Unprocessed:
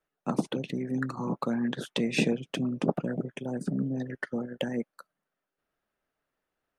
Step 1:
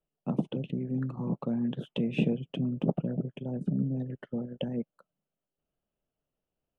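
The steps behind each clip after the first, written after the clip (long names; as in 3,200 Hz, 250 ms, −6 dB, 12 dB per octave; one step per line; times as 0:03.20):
drawn EQ curve 160 Hz 0 dB, 300 Hz −7 dB, 610 Hz −7 dB, 1,900 Hz −22 dB, 3,000 Hz −7 dB, 4,600 Hz −30 dB, 7,900 Hz −27 dB
level +3.5 dB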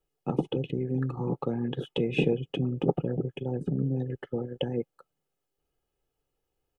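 comb filter 2.4 ms, depth 66%
level +4 dB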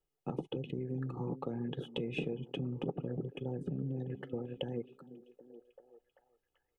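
downward compressor 4 to 1, threshold −28 dBFS, peak gain reduction 9 dB
echo through a band-pass that steps 389 ms, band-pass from 210 Hz, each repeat 0.7 octaves, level −11.5 dB
level −5.5 dB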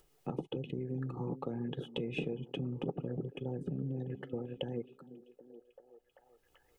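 upward compression, threshold −54 dBFS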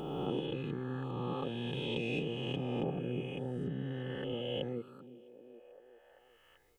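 peak hold with a rise ahead of every peak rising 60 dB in 2.35 s
level −3 dB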